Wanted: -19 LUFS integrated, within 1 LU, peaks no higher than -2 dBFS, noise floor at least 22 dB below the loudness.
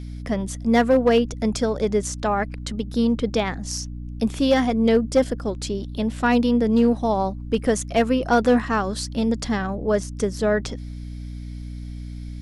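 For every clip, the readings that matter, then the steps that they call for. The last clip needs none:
clipped 0.6%; flat tops at -10.0 dBFS; hum 60 Hz; harmonics up to 300 Hz; hum level -31 dBFS; loudness -22.0 LUFS; peak -10.0 dBFS; loudness target -19.0 LUFS
-> clip repair -10 dBFS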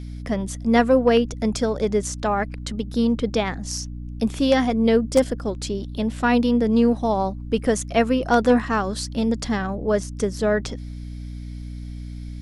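clipped 0.0%; hum 60 Hz; harmonics up to 300 Hz; hum level -31 dBFS
-> de-hum 60 Hz, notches 5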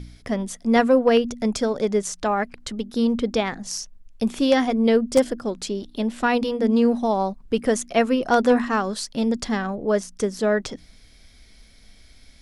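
hum none; loudness -22.5 LUFS; peak -3.5 dBFS; loudness target -19.0 LUFS
-> gain +3.5 dB; limiter -2 dBFS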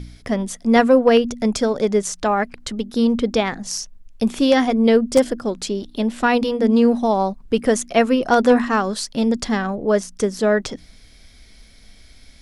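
loudness -19.0 LUFS; peak -2.0 dBFS; noise floor -47 dBFS

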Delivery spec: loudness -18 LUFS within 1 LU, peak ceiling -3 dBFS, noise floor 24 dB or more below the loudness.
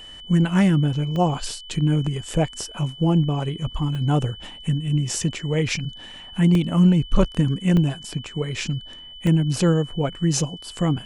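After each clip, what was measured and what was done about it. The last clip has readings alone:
dropouts 5; longest dropout 1.7 ms; steady tone 3000 Hz; tone level -39 dBFS; loudness -22.0 LUFS; peak -4.0 dBFS; loudness target -18.0 LUFS
-> interpolate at 1.16/3.95/6.55/7.77/9.27, 1.7 ms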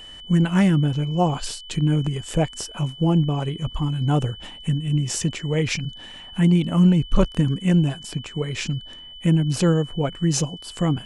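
dropouts 0; steady tone 3000 Hz; tone level -39 dBFS
-> notch 3000 Hz, Q 30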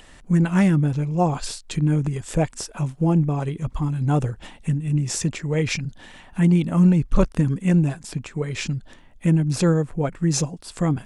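steady tone none; loudness -22.5 LUFS; peak -4.0 dBFS; loudness target -18.0 LUFS
-> gain +4.5 dB; limiter -3 dBFS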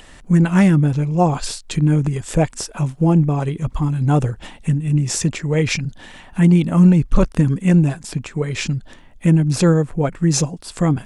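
loudness -18.0 LUFS; peak -3.0 dBFS; noise floor -43 dBFS

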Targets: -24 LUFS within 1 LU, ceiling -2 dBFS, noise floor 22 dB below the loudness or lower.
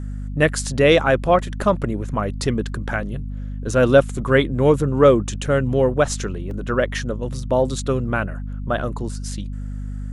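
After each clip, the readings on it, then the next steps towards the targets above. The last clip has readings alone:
dropouts 1; longest dropout 1.6 ms; hum 50 Hz; harmonics up to 250 Hz; hum level -26 dBFS; loudness -20.0 LUFS; peak -1.5 dBFS; loudness target -24.0 LUFS
-> interpolate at 6.51, 1.6 ms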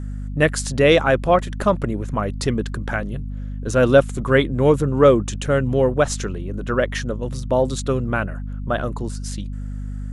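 dropouts 0; hum 50 Hz; harmonics up to 250 Hz; hum level -26 dBFS
-> notches 50/100/150/200/250 Hz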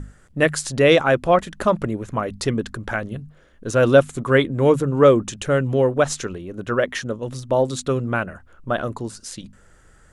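hum none; loudness -20.0 LUFS; peak -2.0 dBFS; loudness target -24.0 LUFS
-> gain -4 dB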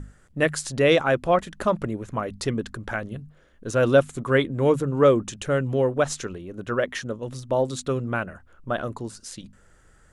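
loudness -24.0 LUFS; peak -6.0 dBFS; noise floor -56 dBFS

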